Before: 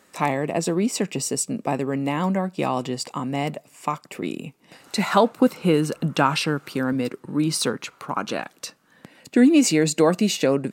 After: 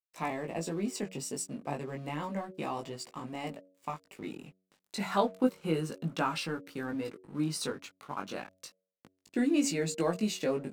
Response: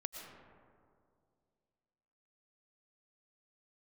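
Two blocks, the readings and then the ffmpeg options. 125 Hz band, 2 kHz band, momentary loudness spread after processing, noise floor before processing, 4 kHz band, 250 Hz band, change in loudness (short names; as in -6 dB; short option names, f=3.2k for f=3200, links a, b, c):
-11.5 dB, -11.5 dB, 13 LU, -59 dBFS, -12.0 dB, -12.0 dB, -11.5 dB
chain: -af "aeval=exprs='sgn(val(0))*max(abs(val(0))-0.0075,0)':c=same,flanger=delay=17.5:depth=3.1:speed=0.31,bandreject=f=93.54:t=h:w=4,bandreject=f=187.08:t=h:w=4,bandreject=f=280.62:t=h:w=4,bandreject=f=374.16:t=h:w=4,bandreject=f=467.7:t=h:w=4,bandreject=f=561.24:t=h:w=4,bandreject=f=654.78:t=h:w=4,volume=-8dB"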